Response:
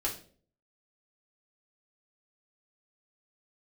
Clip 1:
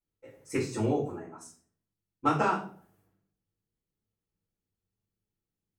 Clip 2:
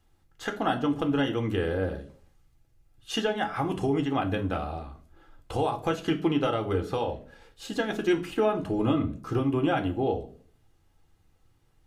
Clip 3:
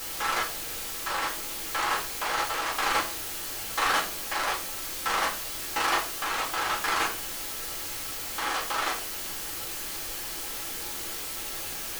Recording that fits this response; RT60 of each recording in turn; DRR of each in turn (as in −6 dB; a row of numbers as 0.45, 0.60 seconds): 3; 0.45, 0.45, 0.45 seconds; −10.0, 5.0, −3.0 decibels